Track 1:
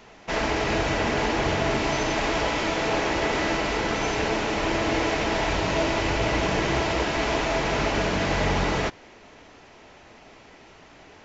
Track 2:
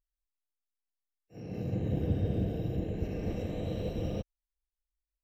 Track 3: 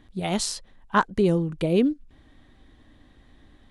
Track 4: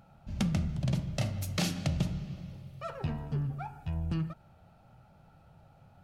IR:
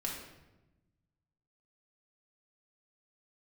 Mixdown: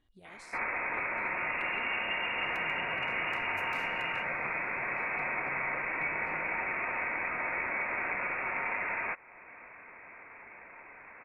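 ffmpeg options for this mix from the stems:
-filter_complex "[0:a]highpass=640,adelay=250,volume=2.5dB[link_01];[1:a]volume=-2dB[link_02];[2:a]equalizer=frequency=190:width=1.5:gain=-8,volume=-18dB[link_03];[3:a]aeval=exprs='0.0447*(abs(mod(val(0)/0.0447+3,4)-2)-1)':channel_layout=same,highpass=frequency=110:width=0.5412,highpass=frequency=110:width=1.3066,adelay=2150,volume=-9.5dB[link_04];[link_01][link_02]amix=inputs=2:normalize=0,lowpass=frequency=2500:width_type=q:width=0.5098,lowpass=frequency=2500:width_type=q:width=0.6013,lowpass=frequency=2500:width_type=q:width=0.9,lowpass=frequency=2500:width_type=q:width=2.563,afreqshift=-2900,acompressor=threshold=-45dB:ratio=1.5,volume=0dB[link_05];[link_03][link_04]amix=inputs=2:normalize=0,acompressor=threshold=-54dB:ratio=4,volume=0dB[link_06];[link_05][link_06]amix=inputs=2:normalize=0"

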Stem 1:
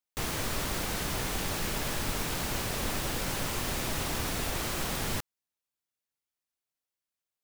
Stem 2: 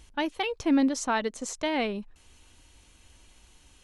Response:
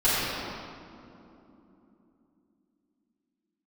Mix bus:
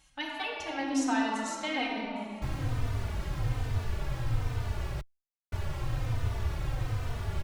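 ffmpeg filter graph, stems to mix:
-filter_complex "[0:a]lowpass=frequency=1600:poles=1,lowshelf=frequency=150:width_type=q:width=3:gain=9,adelay=2250,volume=-2dB,asplit=3[link_01][link_02][link_03];[link_01]atrim=end=5.01,asetpts=PTS-STARTPTS,afade=type=out:start_time=5.006:duration=0.004:curve=hsin[link_04];[link_02]atrim=start=5.01:end=5.52,asetpts=PTS-STARTPTS,volume=0[link_05];[link_03]atrim=start=5.52,asetpts=PTS-STARTPTS,afade=type=in:duration=0.004:curve=hsin[link_06];[link_04][link_05][link_06]concat=n=3:v=0:a=1[link_07];[1:a]highpass=frequency=160:poles=1,equalizer=frequency=380:width_type=o:width=0.71:gain=-15,volume=-3.5dB,asplit=2[link_08][link_09];[link_09]volume=-12.5dB[link_10];[2:a]atrim=start_sample=2205[link_11];[link_10][link_11]afir=irnorm=-1:irlink=0[link_12];[link_07][link_08][link_12]amix=inputs=3:normalize=0,asplit=2[link_13][link_14];[link_14]adelay=3.2,afreqshift=-1.2[link_15];[link_13][link_15]amix=inputs=2:normalize=1"

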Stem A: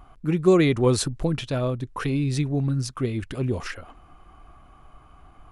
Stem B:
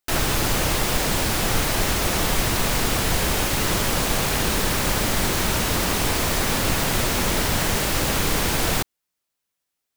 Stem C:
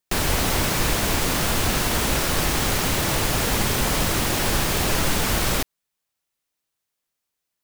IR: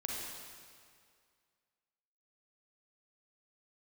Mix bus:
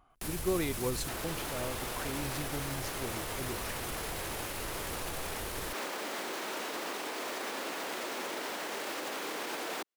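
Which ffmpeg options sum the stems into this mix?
-filter_complex "[0:a]lowshelf=frequency=180:gain=-10,volume=-12dB[link_01];[1:a]alimiter=limit=-18dB:level=0:latency=1:release=392,highpass=frequency=300:width=0.5412,highpass=frequency=300:width=1.3066,highshelf=frequency=4300:gain=-9.5,adelay=1000,volume=-1.5dB[link_02];[2:a]equalizer=frequency=11000:width=1.1:gain=10,acrossover=split=140[link_03][link_04];[link_04]acompressor=threshold=-23dB:ratio=6[link_05];[link_03][link_05]amix=inputs=2:normalize=0,adelay=100,volume=-12dB[link_06];[link_02][link_06]amix=inputs=2:normalize=0,alimiter=level_in=4.5dB:limit=-24dB:level=0:latency=1:release=37,volume=-4.5dB,volume=0dB[link_07];[link_01][link_07]amix=inputs=2:normalize=0"

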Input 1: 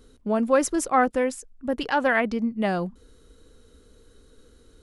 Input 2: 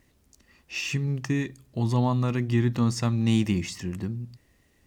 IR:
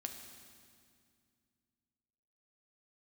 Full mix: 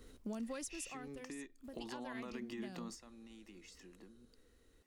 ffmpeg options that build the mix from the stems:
-filter_complex "[0:a]acrossover=split=160|3000[link_01][link_02][link_03];[link_02]acompressor=threshold=-38dB:ratio=5[link_04];[link_01][link_04][link_03]amix=inputs=3:normalize=0,asoftclip=type=tanh:threshold=-17.5dB,volume=-4dB,afade=type=out:start_time=0.67:duration=0.43:silence=0.298538,asplit=2[link_05][link_06];[1:a]highpass=frequency=250:width=0.5412,highpass=frequency=250:width=1.3066,alimiter=level_in=1dB:limit=-24dB:level=0:latency=1:release=74,volume=-1dB,acompressor=threshold=-45dB:ratio=4,volume=-0.5dB[link_07];[link_06]apad=whole_len=214414[link_08];[link_07][link_08]sidechaingate=range=-11dB:threshold=-57dB:ratio=16:detection=peak[link_09];[link_05][link_09]amix=inputs=2:normalize=0,alimiter=level_in=10dB:limit=-24dB:level=0:latency=1:release=412,volume=-10dB"

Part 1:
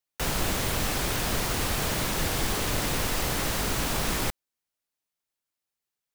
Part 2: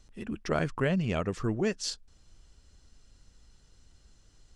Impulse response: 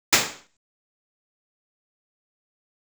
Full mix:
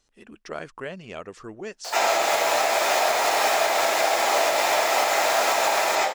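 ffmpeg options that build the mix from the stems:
-filter_complex "[0:a]highpass=frequency=670:width_type=q:width=4.6,adelay=1650,volume=1dB,asplit=2[link_01][link_02];[link_02]volume=-15dB[link_03];[1:a]bass=frequency=250:gain=-14,treble=frequency=4000:gain=1,volume=-3.5dB,asplit=2[link_04][link_05];[link_05]apad=whole_len=343731[link_06];[link_01][link_06]sidechaincompress=threshold=-48dB:ratio=4:attack=16:release=428[link_07];[2:a]atrim=start_sample=2205[link_08];[link_03][link_08]afir=irnorm=-1:irlink=0[link_09];[link_07][link_04][link_09]amix=inputs=3:normalize=0,alimiter=limit=-11dB:level=0:latency=1:release=353"

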